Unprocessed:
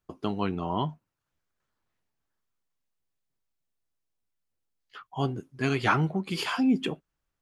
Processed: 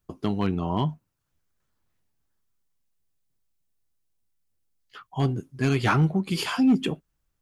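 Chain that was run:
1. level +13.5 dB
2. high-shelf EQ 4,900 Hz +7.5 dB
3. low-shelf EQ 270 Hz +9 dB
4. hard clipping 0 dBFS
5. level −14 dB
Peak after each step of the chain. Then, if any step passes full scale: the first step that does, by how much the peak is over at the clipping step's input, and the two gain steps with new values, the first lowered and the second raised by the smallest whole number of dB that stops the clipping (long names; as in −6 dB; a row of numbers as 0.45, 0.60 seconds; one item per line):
+2.5, +3.0, +5.0, 0.0, −14.0 dBFS
step 1, 5.0 dB
step 1 +8.5 dB, step 5 −9 dB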